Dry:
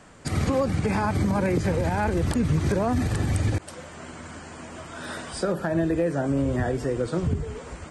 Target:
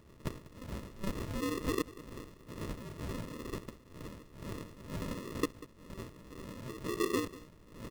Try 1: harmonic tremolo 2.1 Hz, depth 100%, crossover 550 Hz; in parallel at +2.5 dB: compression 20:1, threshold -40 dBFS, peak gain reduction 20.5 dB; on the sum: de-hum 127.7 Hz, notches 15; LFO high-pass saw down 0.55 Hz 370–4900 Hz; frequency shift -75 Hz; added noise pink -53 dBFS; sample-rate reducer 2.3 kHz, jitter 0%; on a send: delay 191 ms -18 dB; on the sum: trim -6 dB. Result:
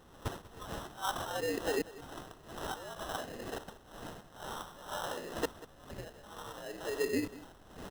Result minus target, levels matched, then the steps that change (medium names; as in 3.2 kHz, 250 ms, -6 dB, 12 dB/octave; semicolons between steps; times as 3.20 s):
sample-rate reducer: distortion -20 dB
change: sample-rate reducer 770 Hz, jitter 0%